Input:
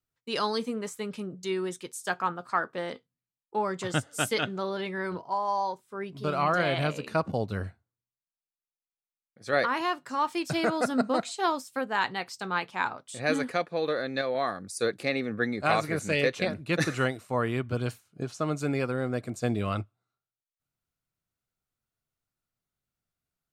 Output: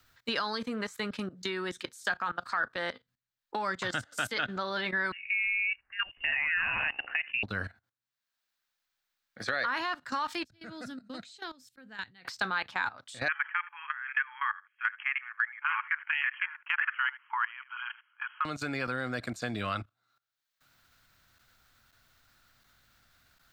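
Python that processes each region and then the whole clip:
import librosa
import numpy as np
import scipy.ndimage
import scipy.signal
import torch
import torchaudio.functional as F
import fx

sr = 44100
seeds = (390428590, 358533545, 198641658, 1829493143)

y = fx.chain(x, sr, fx.highpass(hz=380.0, slope=24),
    fx.freq_invert(carrier_hz=3200), at=(5.12, 7.43))
y = fx.chain(y, sr, fx.tone_stack(knobs='10-0-1'),
    fx.auto_swell(attack_ms=160.0), at=(10.44, 12.25))
y = fx.chain(y, sr, fx.brickwall_bandpass(low_hz=840.0, high_hz=3300.0),
    fx.echo_single(ms=76, db=-18.5), at=(13.28, 18.45))
y = fx.level_steps(y, sr, step_db=18)
y = fx.graphic_eq_15(y, sr, hz=(160, 400, 1600, 4000, 10000), db=(-7, -7, 9, 6, -7))
y = fx.band_squash(y, sr, depth_pct=70)
y = y * 10.0 ** (2.5 / 20.0)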